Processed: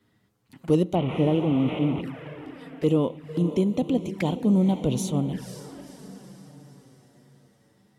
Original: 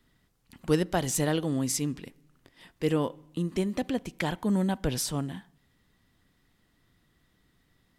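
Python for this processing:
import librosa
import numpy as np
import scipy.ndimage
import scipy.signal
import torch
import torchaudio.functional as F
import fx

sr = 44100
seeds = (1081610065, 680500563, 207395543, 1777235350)

y = fx.delta_mod(x, sr, bps=16000, step_db=-28.0, at=(0.95, 2.01))
y = 10.0 ** (-17.5 / 20.0) * np.tanh(y / 10.0 ** (-17.5 / 20.0))
y = fx.echo_diffused(y, sr, ms=505, feedback_pct=49, wet_db=-11.0)
y = fx.env_flanger(y, sr, rest_ms=10.1, full_db=-29.0)
y = scipy.signal.sosfilt(scipy.signal.butter(2, 95.0, 'highpass', fs=sr, output='sos'), y)
y = fx.tilt_shelf(y, sr, db=3.5, hz=1400.0)
y = y * 10.0 ** (4.0 / 20.0)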